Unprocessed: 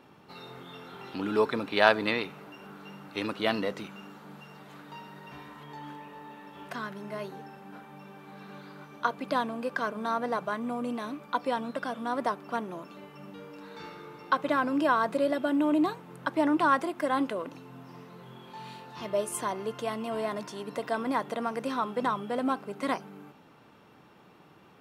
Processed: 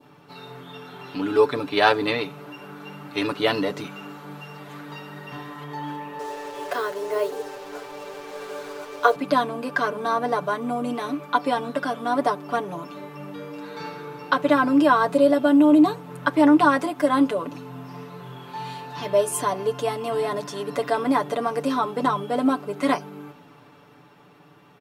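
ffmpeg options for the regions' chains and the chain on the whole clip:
-filter_complex "[0:a]asettb=1/sr,asplit=3[a][b][c];[a]atrim=end=6.194[d];[b]atrim=start=6.19:end=9.16,asetpts=PTS-STARTPTS,afade=t=in:d=0.004:c=qsin,afade=t=out:st=2.966:d=0.004:c=qsin,highpass=f=460:t=q:w=3.4,acrusher=bits=7:mix=0:aa=0.5[e];[c]atrim=start=9.156[f];[d][e]acrossfade=d=0.004:c1=hsin:c2=qsin[g];[g][f]acrossfade=d=0.004:c1=qsin:c2=hsin,aecho=1:1:6.9:0.81,adynamicequalizer=threshold=0.00708:dfrequency=1900:dqfactor=0.99:tfrequency=1900:tqfactor=0.99:attack=5:release=100:ratio=0.375:range=2.5:mode=cutabove:tftype=bell,dynaudnorm=f=130:g=21:m=4dB,volume=2dB"

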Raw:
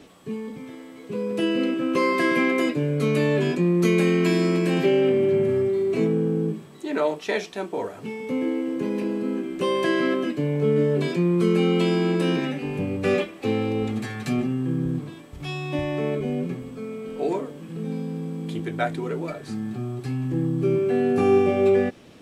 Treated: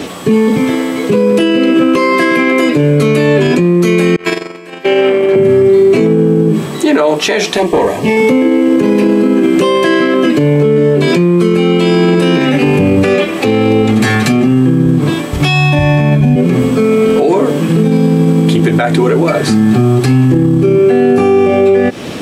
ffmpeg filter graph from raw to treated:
-filter_complex "[0:a]asettb=1/sr,asplit=3[a][b][c];[a]atrim=end=4.164[d];[b]atrim=start=4.16:end=5.36,asetpts=PTS-STARTPTS,afade=t=in:d=0.004:c=qsin,afade=t=out:st=1.196:d=0.004:c=qsin,highpass=f=600:p=1,equalizer=f=1.1k:w=0.43:g=6,agate=range=-33dB:threshold=-21dB:ratio=16:release=100:detection=peak[e];[c]atrim=start=5.356[f];[d][e]acrossfade=d=0.004:c1=hsin:c2=qsin[g];[g][f]acrossfade=d=0.004:c1=qsin:c2=hsin,asettb=1/sr,asplit=3[h][i][j];[h]atrim=end=7.574[k];[i]atrim=start=7.57:end=8.17,asetpts=PTS-STARTPTS,afade=t=in:d=0.004:c=qsin,afade=t=out:st=0.596:d=0.004:c=qsin,aeval=exprs='(tanh(17.8*val(0)+0.6)-tanh(0.6))/17.8':c=same,asuperstop=centerf=1400:order=12:qfactor=4.3[l];[j]atrim=start=8.166[m];[k][l]acrossfade=d=0.004:c1=hsin:c2=qsin[n];[n][m]acrossfade=d=0.004:c1=qsin:c2=hsin,asettb=1/sr,asplit=3[o][p][q];[o]atrim=end=15.484[r];[p]atrim=start=15.48:end=16.36,asetpts=PTS-STARTPTS,afade=t=in:d=0.004:c=qsin,afade=t=out:st=0.876:d=0.004:c=qsin,asubboost=boost=11:cutoff=220,aecho=1:1:1.2:0.74,atrim=end_sample=38808[s];[q]atrim=start=16.356[t];[r][s]acrossfade=d=0.004:c1=hsin:c2=qsin[u];[u][t]acrossfade=d=0.004:c1=qsin:c2=hsin,highpass=f=94:p=1,acompressor=threshold=-28dB:ratio=6,alimiter=level_in=28dB:limit=-1dB:release=50:level=0:latency=1,volume=-1dB"

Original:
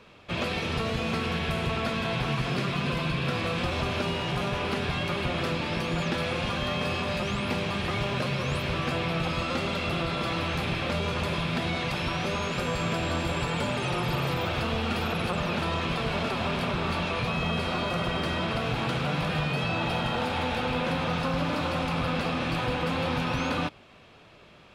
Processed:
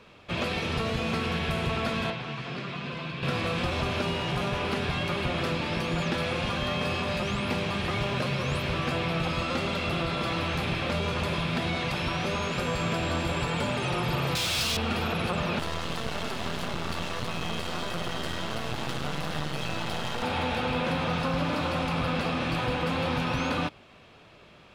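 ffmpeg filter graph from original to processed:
-filter_complex "[0:a]asettb=1/sr,asplit=3[a][b][c];[a]atrim=end=2.104[d];[b]atrim=start=2.1:end=3.23,asetpts=PTS-STARTPTS,afade=t=in:d=0.004:c=qsin,afade=t=out:st=1.126:d=0.004:c=qsin,acrossover=split=1300|3900[e][f][g];[e]acompressor=threshold=-34dB:ratio=4[h];[f]acompressor=threshold=-40dB:ratio=4[i];[g]acompressor=threshold=-53dB:ratio=4[j];[h][i][j]amix=inputs=3:normalize=0,highpass=110,lowpass=6.6k[k];[c]atrim=start=3.226[l];[d][k]acrossfade=d=0.004:c1=hsin:c2=qsin[m];[m][l]acrossfade=d=0.004:c1=qsin:c2=hsin,asettb=1/sr,asplit=3[n][o][p];[n]atrim=end=14.354[q];[o]atrim=start=14.35:end=14.77,asetpts=PTS-STARTPTS,afade=t=in:d=0.004:c=qsin,afade=t=out:st=0.416:d=0.004:c=qsin,equalizer=f=5.6k:t=o:w=1.1:g=9.5,asplit=2[r][s];[s]highpass=f=720:p=1,volume=25dB,asoftclip=type=tanh:threshold=-17dB[t];[r][t]amix=inputs=2:normalize=0,lowpass=f=7.2k:p=1,volume=-6dB,acrossover=split=180|3000[u][v][w];[v]acompressor=threshold=-42dB:ratio=2:attack=3.2:release=140:knee=2.83:detection=peak[x];[u][x][w]amix=inputs=3:normalize=0[y];[p]atrim=start=14.766[z];[q][y]acrossfade=d=0.004:c1=hsin:c2=qsin[aa];[aa][z]acrossfade=d=0.004:c1=qsin:c2=hsin,asettb=1/sr,asplit=3[ab][ac][ad];[ab]atrim=end=15.594[ae];[ac]atrim=start=15.59:end=20.23,asetpts=PTS-STARTPTS,afade=t=in:d=0.004:c=qsin,afade=t=out:st=4.636:d=0.004:c=qsin,asuperstop=centerf=2400:order=4:qfactor=7.2,highshelf=f=5.4k:g=7,aeval=exprs='max(val(0),0)':c=same[af];[ad]atrim=start=20.226[ag];[ae][af]acrossfade=d=0.004:c1=hsin:c2=qsin[ah];[ah][ag]acrossfade=d=0.004:c1=qsin:c2=hsin"

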